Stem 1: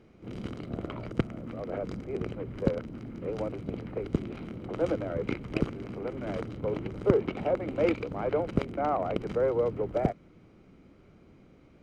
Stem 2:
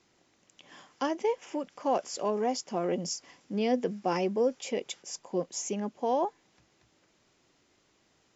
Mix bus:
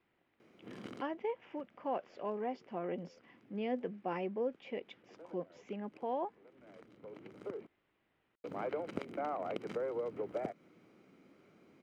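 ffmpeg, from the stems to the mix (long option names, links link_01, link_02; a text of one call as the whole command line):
ffmpeg -i stem1.wav -i stem2.wav -filter_complex "[0:a]highpass=220,acompressor=threshold=-30dB:ratio=5,crystalizer=i=0.5:c=0,adelay=400,volume=-4.5dB,asplit=3[link_01][link_02][link_03];[link_01]atrim=end=7.67,asetpts=PTS-STARTPTS,afade=type=out:start_time=7.666:duration=0.004:curve=hsin[link_04];[link_02]atrim=start=7.67:end=8.44,asetpts=PTS-STARTPTS,volume=0[link_05];[link_03]atrim=start=8.44,asetpts=PTS-STARTPTS,afade=type=in:duration=0.004:curve=hsin[link_06];[link_04][link_05][link_06]concat=n=3:v=0:a=1[link_07];[1:a]lowpass=frequency=3000:width=0.5412,lowpass=frequency=3000:width=1.3066,volume=-9dB,asplit=2[link_08][link_09];[link_09]apad=whole_len=539289[link_10];[link_07][link_10]sidechaincompress=threshold=-57dB:ratio=8:attack=6.7:release=1060[link_11];[link_11][link_08]amix=inputs=2:normalize=0,equalizer=frequency=1900:width=1.5:gain=2.5" out.wav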